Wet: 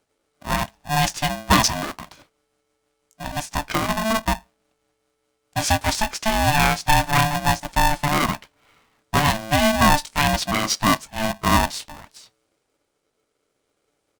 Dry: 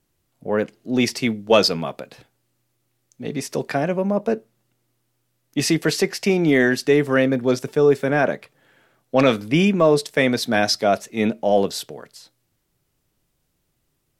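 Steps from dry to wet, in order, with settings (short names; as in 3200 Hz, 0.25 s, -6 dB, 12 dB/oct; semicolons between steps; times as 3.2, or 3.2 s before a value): gliding pitch shift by +2.5 st ending unshifted; downsampling 22050 Hz; polarity switched at an audio rate 440 Hz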